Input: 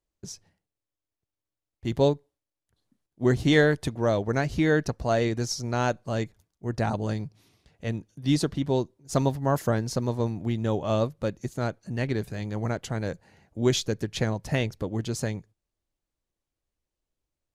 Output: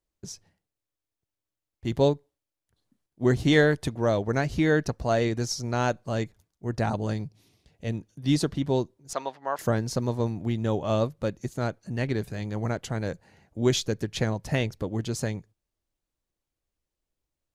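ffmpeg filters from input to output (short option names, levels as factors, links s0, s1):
-filter_complex "[0:a]asettb=1/sr,asplit=3[s0][s1][s2];[s0]atrim=end=7.234[s3];[s1]atrim=start=7.23:end=7.92,asetpts=PTS-STARTPTS,afade=t=in:d=0.004:c=qsin,afade=t=out:st=0.686:d=0.004:c=qsin,equalizer=f=1300:w=1.2:g=-6.5[s4];[s2]atrim=start=7.916[s5];[s3][s4]acrossfade=d=0.004:c1=hsin:c2=qsin[s6];[s6][s5]acrossfade=d=0.004:c1=qsin:c2=hsin,asettb=1/sr,asplit=3[s7][s8][s9];[s7]atrim=end=9.134[s10];[s8]atrim=start=9.13:end=9.59,asetpts=PTS-STARTPTS,afade=t=in:d=0.004:c=qsin,afade=t=out:st=0.456:d=0.004:c=qsin,highpass=720,lowpass=3400[s11];[s9]atrim=start=9.586[s12];[s10][s11]acrossfade=d=0.004:c1=hsin:c2=qsin[s13];[s13][s12]acrossfade=d=0.004:c1=qsin:c2=hsin"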